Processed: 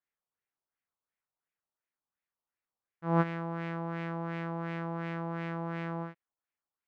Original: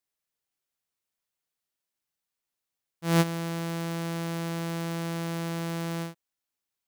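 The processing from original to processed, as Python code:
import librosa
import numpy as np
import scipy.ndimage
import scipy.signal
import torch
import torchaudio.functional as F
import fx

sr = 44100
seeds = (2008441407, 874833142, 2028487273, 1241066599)

y = fx.filter_lfo_lowpass(x, sr, shape='sine', hz=2.8, low_hz=930.0, high_hz=2200.0, q=2.2)
y = y * 10.0 ** (-5.0 / 20.0)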